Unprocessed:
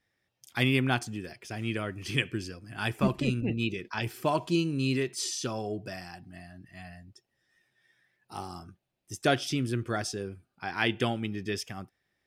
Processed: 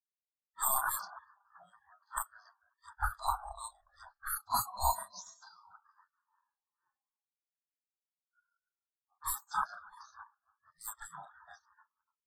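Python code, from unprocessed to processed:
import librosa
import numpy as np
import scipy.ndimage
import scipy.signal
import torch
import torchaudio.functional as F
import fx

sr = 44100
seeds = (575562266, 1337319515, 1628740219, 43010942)

p1 = fx.frame_reverse(x, sr, frame_ms=90.0)
p2 = np.repeat(scipy.signal.resample_poly(p1, 1, 4), 4)[:len(p1)]
p3 = scipy.signal.sosfilt(scipy.signal.cheby1(2, 1.0, [1400.0, 4100.0], 'bandstop', fs=sr, output='sos'), p2)
p4 = fx.high_shelf(p3, sr, hz=3400.0, db=11.5)
p5 = p4 + fx.echo_filtered(p4, sr, ms=290, feedback_pct=28, hz=1900.0, wet_db=-7.5, dry=0)
p6 = fx.rev_schroeder(p5, sr, rt60_s=1.9, comb_ms=31, drr_db=19.5)
p7 = fx.env_lowpass(p6, sr, base_hz=900.0, full_db=-25.0)
p8 = np.clip(10.0 ** (25.5 / 20.0) * p7, -1.0, 1.0) / 10.0 ** (25.5 / 20.0)
p9 = fx.graphic_eq(p8, sr, hz=(125, 250, 500, 1000, 2000, 4000, 8000), db=(9, 10, 8, 8, 4, 5, -5))
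p10 = fx.spec_gate(p9, sr, threshold_db=-25, keep='weak')
p11 = fx.fixed_phaser(p10, sr, hz=1100.0, stages=4)
p12 = fx.spectral_expand(p11, sr, expansion=2.5)
y = p12 * 10.0 ** (6.0 / 20.0)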